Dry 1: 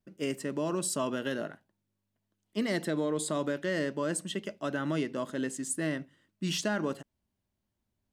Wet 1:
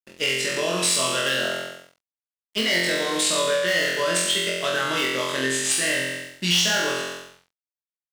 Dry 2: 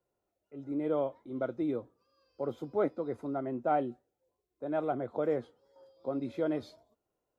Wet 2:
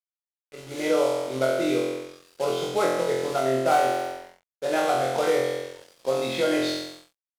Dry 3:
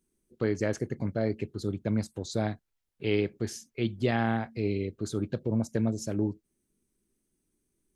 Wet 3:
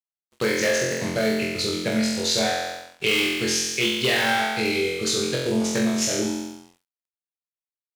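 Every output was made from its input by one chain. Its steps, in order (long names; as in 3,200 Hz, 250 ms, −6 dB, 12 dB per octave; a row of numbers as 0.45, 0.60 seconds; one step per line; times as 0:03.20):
variable-slope delta modulation 64 kbit/s
meter weighting curve D
in parallel at −12 dB: wrap-around overflow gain 18 dB
on the sum: high-pass filter 76 Hz 6 dB per octave
parametric band 280 Hz −13.5 dB 0.37 octaves
on a send: flutter between parallel walls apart 3.9 metres, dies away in 0.95 s
on the sum: dead-zone distortion −53 dBFS
downward compressor 2 to 1, threshold −31 dBFS
normalise the peak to −9 dBFS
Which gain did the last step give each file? +7.5, +9.0, +8.0 decibels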